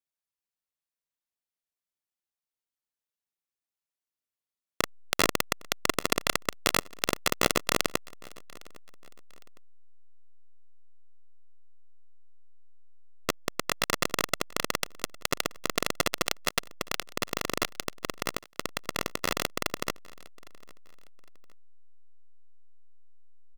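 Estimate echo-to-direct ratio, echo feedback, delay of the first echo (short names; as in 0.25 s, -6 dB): -23.5 dB, 35%, 0.808 s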